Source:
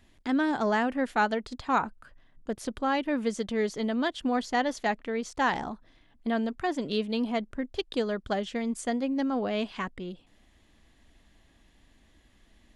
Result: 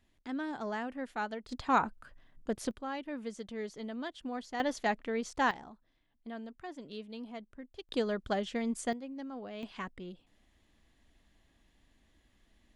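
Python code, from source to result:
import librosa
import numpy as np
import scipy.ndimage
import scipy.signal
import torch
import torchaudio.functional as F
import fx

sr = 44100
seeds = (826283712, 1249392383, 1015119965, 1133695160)

y = fx.gain(x, sr, db=fx.steps((0.0, -11.0), (1.49, -1.5), (2.71, -11.5), (4.6, -3.0), (5.51, -15.0), (7.89, -3.0), (8.93, -14.0), (9.63, -7.0)))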